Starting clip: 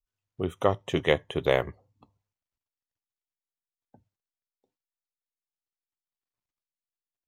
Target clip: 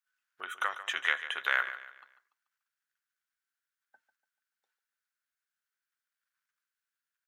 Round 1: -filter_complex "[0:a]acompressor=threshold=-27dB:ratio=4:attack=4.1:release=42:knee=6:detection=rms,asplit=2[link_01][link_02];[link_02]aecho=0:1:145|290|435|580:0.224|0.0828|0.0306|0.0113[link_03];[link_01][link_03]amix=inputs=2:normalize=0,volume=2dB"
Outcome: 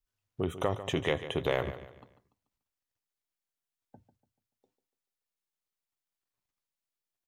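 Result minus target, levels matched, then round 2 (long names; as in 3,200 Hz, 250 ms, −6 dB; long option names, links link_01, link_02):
2,000 Hz band −8.5 dB
-filter_complex "[0:a]acompressor=threshold=-27dB:ratio=4:attack=4.1:release=42:knee=6:detection=rms,highpass=frequency=1500:width_type=q:width=6.6,asplit=2[link_01][link_02];[link_02]aecho=0:1:145|290|435|580:0.224|0.0828|0.0306|0.0113[link_03];[link_01][link_03]amix=inputs=2:normalize=0,volume=2dB"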